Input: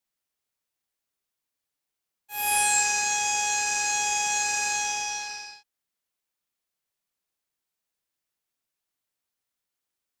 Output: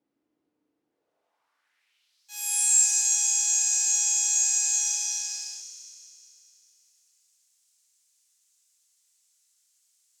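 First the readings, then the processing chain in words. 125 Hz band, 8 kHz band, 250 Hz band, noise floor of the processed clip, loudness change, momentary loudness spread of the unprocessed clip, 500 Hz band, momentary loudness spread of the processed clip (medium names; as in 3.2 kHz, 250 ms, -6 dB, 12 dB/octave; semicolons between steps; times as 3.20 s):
no reading, +5.5 dB, under -20 dB, -80 dBFS, +2.5 dB, 13 LU, under -20 dB, 16 LU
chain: power-law waveshaper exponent 0.7; FDN reverb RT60 3.2 s, high-frequency decay 0.95×, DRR 2.5 dB; band-pass sweep 300 Hz -> 7.2 kHz, 0.85–2.43 s; trim +1.5 dB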